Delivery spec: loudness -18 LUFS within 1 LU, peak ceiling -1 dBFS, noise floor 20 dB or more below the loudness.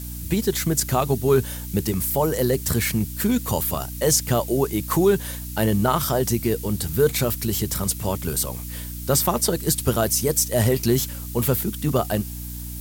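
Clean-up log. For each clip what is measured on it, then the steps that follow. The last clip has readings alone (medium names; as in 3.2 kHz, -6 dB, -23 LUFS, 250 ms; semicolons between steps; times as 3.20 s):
hum 60 Hz; highest harmonic 300 Hz; hum level -32 dBFS; noise floor -33 dBFS; noise floor target -42 dBFS; loudness -22.0 LUFS; peak level -6.5 dBFS; loudness target -18.0 LUFS
-> de-hum 60 Hz, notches 5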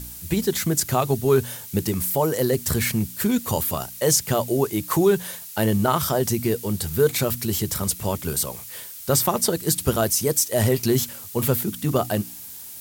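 hum not found; noise floor -39 dBFS; noise floor target -43 dBFS
-> noise reduction 6 dB, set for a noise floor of -39 dBFS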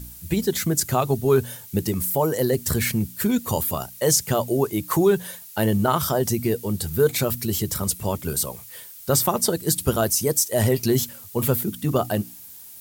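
noise floor -43 dBFS; loudness -22.5 LUFS; peak level -7.0 dBFS; loudness target -18.0 LUFS
-> trim +4.5 dB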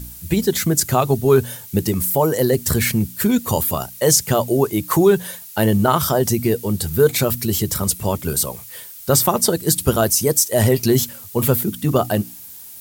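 loudness -18.0 LUFS; peak level -2.5 dBFS; noise floor -38 dBFS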